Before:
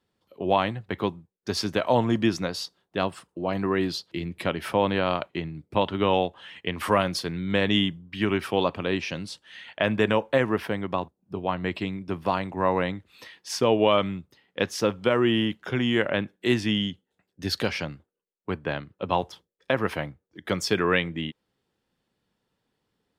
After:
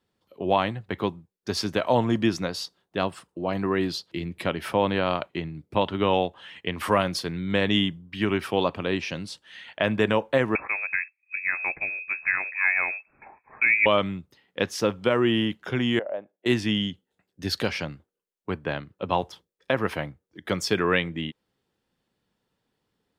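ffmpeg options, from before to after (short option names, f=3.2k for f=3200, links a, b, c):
-filter_complex "[0:a]asettb=1/sr,asplit=3[a][b][c];[a]atrim=end=10.554[d];[b]atrim=start=10.55:end=13.86,asetpts=PTS-STARTPTS,afade=t=in:d=0.004:c=qsin,afade=t=out:st=3.306:d=0.004:c=qsin,lowpass=f=2.3k:t=q:w=0.5098,lowpass=f=2.3k:t=q:w=0.6013,lowpass=f=2.3k:t=q:w=0.9,lowpass=f=2.3k:t=q:w=2.563,afreqshift=-2700[e];[c]atrim=start=13.856[f];[d][e]acrossfade=d=0.004:c1=hsin:c2=qsin[g];[g][f]acrossfade=d=0.004:c1=qsin:c2=hsin,asettb=1/sr,asplit=3[h][i][j];[h]atrim=end=15.994[k];[i]atrim=start=15.99:end=16.46,asetpts=PTS-STARTPTS,afade=t=in:d=0.004:c=qsin,afade=t=out:st=0.466:d=0.004:c=qsin,bandpass=f=630:t=q:w=4.1[l];[j]atrim=start=16.456[m];[k][l]acrossfade=d=0.004:c1=hsin:c2=qsin[n];[n][m]acrossfade=d=0.004:c1=qsin:c2=hsin"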